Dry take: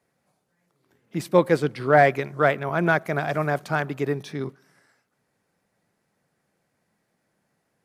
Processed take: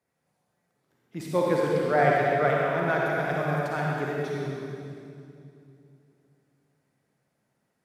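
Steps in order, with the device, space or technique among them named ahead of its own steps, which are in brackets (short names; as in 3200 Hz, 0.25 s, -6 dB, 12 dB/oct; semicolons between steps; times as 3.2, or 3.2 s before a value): stairwell (reverb RT60 2.6 s, pre-delay 45 ms, DRR -4 dB); gain -8.5 dB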